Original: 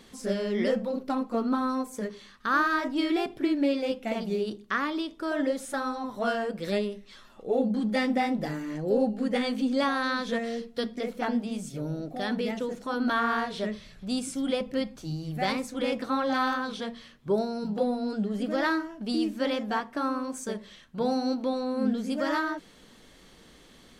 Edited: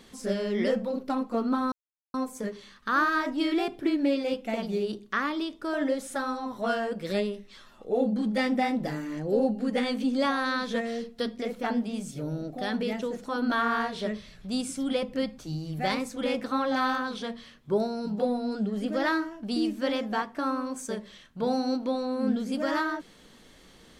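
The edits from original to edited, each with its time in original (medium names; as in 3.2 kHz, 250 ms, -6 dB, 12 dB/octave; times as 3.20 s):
1.72 s: insert silence 0.42 s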